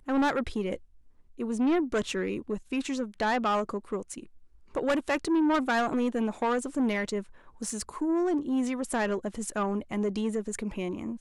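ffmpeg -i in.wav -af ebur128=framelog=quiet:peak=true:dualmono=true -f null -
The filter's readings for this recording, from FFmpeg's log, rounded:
Integrated loudness:
  I:         -26.5 LUFS
  Threshold: -36.8 LUFS
Loudness range:
  LRA:         2.5 LU
  Threshold: -46.6 LUFS
  LRA low:   -27.9 LUFS
  LRA high:  -25.4 LUFS
True peak:
  Peak:      -20.4 dBFS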